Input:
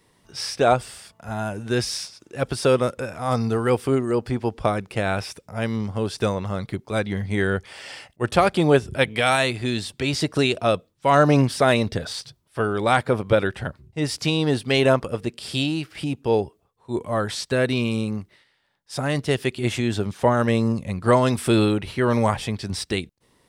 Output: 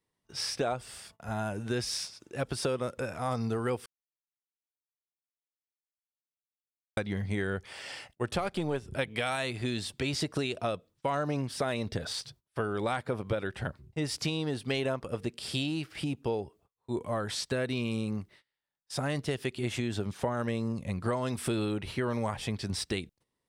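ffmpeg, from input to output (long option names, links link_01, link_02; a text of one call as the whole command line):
ffmpeg -i in.wav -filter_complex "[0:a]asettb=1/sr,asplit=3[link_01][link_02][link_03];[link_01]atrim=end=8.384[link_04];[link_02]atrim=start=8.38:end=8.94,asetpts=PTS-STARTPTS,afade=type=in:duration=0.004:curve=qsin,afade=type=out:start_time=0.556:duration=0.004:curve=qsin,aeval=exprs='if(lt(val(0),0),0.708*val(0),val(0))':channel_layout=same[link_05];[link_03]atrim=start=8.936[link_06];[link_04][link_05]acrossfade=duration=0.004:curve1=hsin:curve2=qsin[link_07];[link_07][link_06]acrossfade=duration=0.004:curve1=qsin:curve2=hsin,asplit=3[link_08][link_09][link_10];[link_08]atrim=end=3.86,asetpts=PTS-STARTPTS,afade=type=out:start_time=3.856:duration=0.004:curve=hsin[link_11];[link_09]atrim=start=3.86:end=6.97,asetpts=PTS-STARTPTS,volume=0[link_12];[link_10]atrim=start=6.97,asetpts=PTS-STARTPTS,afade=type=in:duration=0.004:curve=hsin[link_13];[link_11][link_12][link_13]concat=n=3:v=0:a=1,agate=range=-19dB:threshold=-51dB:ratio=16:detection=peak,acompressor=threshold=-24dB:ratio=6,volume=-4dB" out.wav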